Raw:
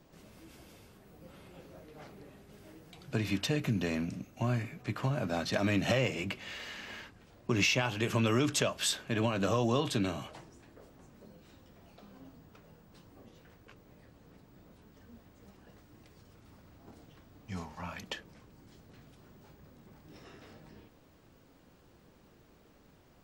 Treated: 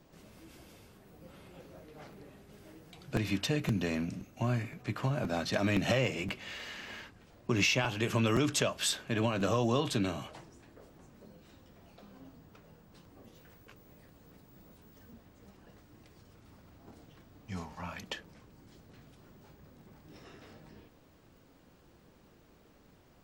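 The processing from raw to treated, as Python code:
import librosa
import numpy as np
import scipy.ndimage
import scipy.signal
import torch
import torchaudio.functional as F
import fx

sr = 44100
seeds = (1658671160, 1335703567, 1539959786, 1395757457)

y = fx.high_shelf(x, sr, hz=9000.0, db=10.0, at=(13.24, 15.12))
y = fx.buffer_crackle(y, sr, first_s=0.56, period_s=0.52, block=256, kind='repeat')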